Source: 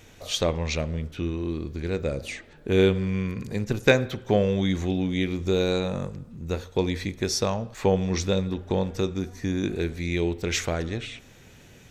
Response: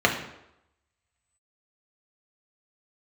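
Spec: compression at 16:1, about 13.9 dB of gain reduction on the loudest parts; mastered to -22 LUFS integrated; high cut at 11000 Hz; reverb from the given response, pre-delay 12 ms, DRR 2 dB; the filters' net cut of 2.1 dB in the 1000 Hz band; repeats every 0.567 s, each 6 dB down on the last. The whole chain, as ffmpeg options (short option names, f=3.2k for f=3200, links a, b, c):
-filter_complex "[0:a]lowpass=11k,equalizer=f=1k:t=o:g=-3,acompressor=threshold=-26dB:ratio=16,aecho=1:1:567|1134|1701|2268|2835|3402:0.501|0.251|0.125|0.0626|0.0313|0.0157,asplit=2[a][b];[1:a]atrim=start_sample=2205,adelay=12[c];[b][c]afir=irnorm=-1:irlink=0,volume=-20dB[d];[a][d]amix=inputs=2:normalize=0,volume=7.5dB"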